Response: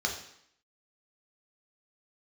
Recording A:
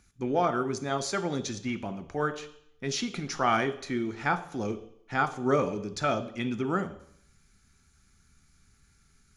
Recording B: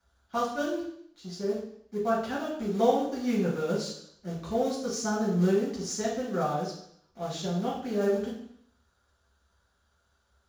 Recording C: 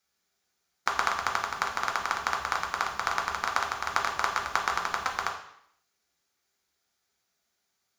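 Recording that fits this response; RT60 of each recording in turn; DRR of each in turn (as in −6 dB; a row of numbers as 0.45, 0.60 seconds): C; 0.70, 0.70, 0.70 seconds; 9.5, −5.5, 0.5 decibels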